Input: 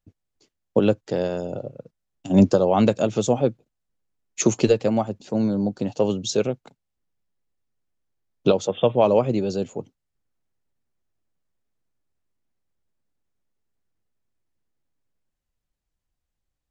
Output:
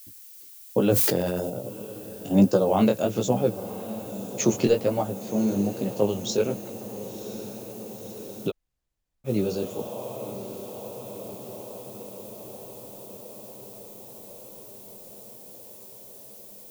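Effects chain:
background noise violet −43 dBFS
chorus effect 1.2 Hz, delay 15.5 ms, depth 8 ms
feedback delay with all-pass diffusion 1,040 ms, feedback 70%, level −14 dB
0:00.84–0:01.50: level that may fall only so fast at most 21 dB per second
0:08.49–0:09.27: fill with room tone, crossfade 0.06 s

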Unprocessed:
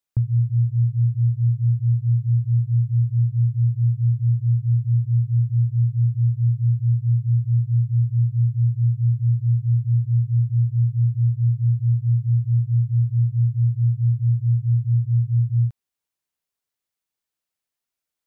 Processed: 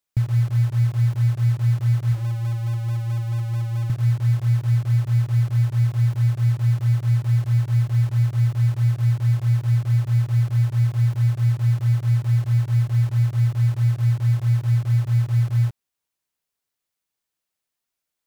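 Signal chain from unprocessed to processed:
0:02.11–0:03.90: mains-hum notches 60/120 Hz
in parallel at −9.5 dB: wrap-around overflow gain 29.5 dB

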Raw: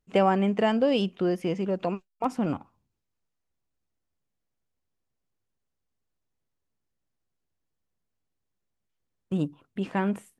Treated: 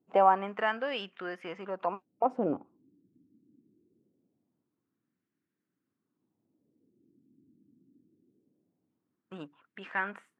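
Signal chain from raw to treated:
noise in a band 91–310 Hz −67 dBFS
auto-filter band-pass sine 0.23 Hz 270–1,700 Hz
level +5.5 dB

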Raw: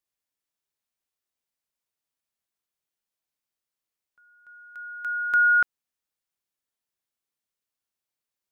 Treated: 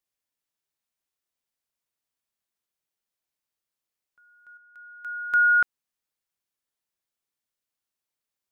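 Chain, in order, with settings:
0:04.57–0:05.48: expander for the loud parts 1.5 to 1, over −34 dBFS

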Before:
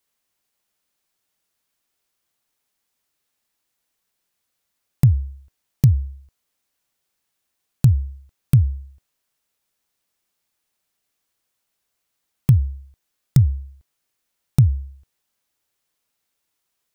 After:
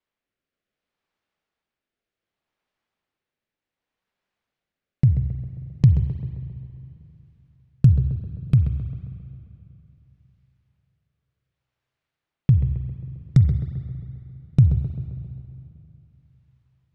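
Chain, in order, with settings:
rotating-speaker cabinet horn 0.65 Hz
spring reverb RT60 3.1 s, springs 39/45 ms, chirp 30 ms, DRR 10 dB
low-pass that shuts in the quiet parts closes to 2,800 Hz, open at −13.5 dBFS
on a send: tape delay 132 ms, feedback 68%, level −7 dB, low-pass 1,400 Hz

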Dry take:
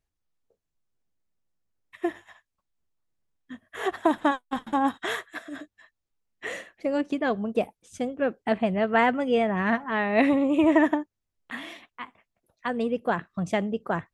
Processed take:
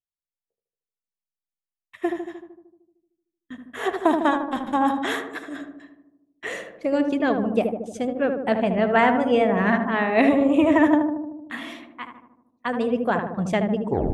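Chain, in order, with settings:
turntable brake at the end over 0.34 s
noise reduction from a noise print of the clip's start 9 dB
noise gate with hold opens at −44 dBFS
on a send: feedback echo with a low-pass in the loop 76 ms, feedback 70%, low-pass 1,000 Hz, level −4 dB
on the sum: level +2.5 dB

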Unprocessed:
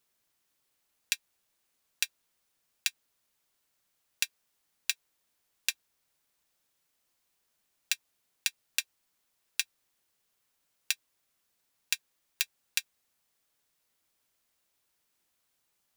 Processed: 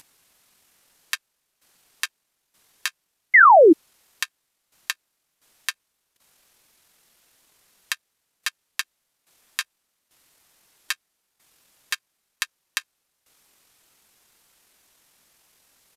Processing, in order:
parametric band 140 Hz −6.5 dB 0.21 octaves
in parallel at +2 dB: upward compression, threshold −40 dBFS
on the sum: sound drawn into the spectrogram fall, 0:03.34–0:03.72, 450–3,200 Hz −5 dBFS
pitch shifter −7 semitones
output level in coarse steps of 13 dB
level +2.5 dB

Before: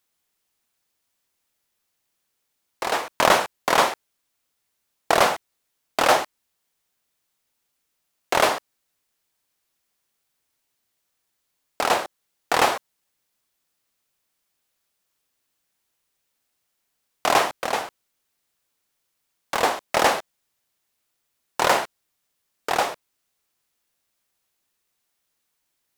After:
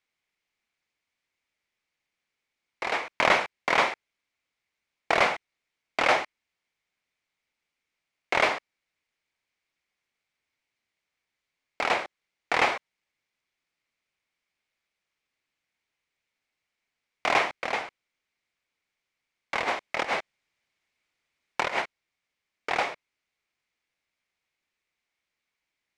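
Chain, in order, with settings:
low-pass filter 5,200 Hz 12 dB per octave
parametric band 2,200 Hz +10.5 dB 0.45 octaves
0:19.63–0:21.82: compressor whose output falls as the input rises −21 dBFS, ratio −0.5
level −6 dB

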